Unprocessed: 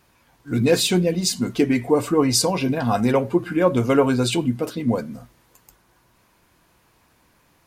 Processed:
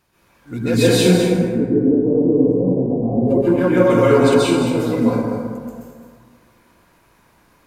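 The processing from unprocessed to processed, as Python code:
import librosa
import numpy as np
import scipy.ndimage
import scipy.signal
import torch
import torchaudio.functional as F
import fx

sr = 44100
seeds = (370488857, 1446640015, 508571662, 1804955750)

y = fx.cheby2_lowpass(x, sr, hz=1400.0, order=4, stop_db=50, at=(1.16, 3.28))
y = y + 10.0 ** (-9.5 / 20.0) * np.pad(y, (int(214 * sr / 1000.0), 0))[:len(y)]
y = fx.rev_plate(y, sr, seeds[0], rt60_s=1.9, hf_ratio=0.4, predelay_ms=115, drr_db=-9.5)
y = F.gain(torch.from_numpy(y), -5.5).numpy()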